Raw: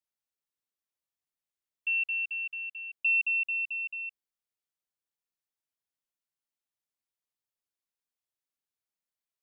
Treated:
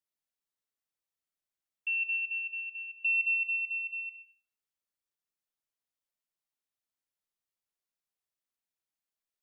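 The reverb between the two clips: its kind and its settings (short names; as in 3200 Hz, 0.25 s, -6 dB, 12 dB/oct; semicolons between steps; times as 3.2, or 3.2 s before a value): digital reverb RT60 0.59 s, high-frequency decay 0.6×, pre-delay 20 ms, DRR 6 dB; gain -2.5 dB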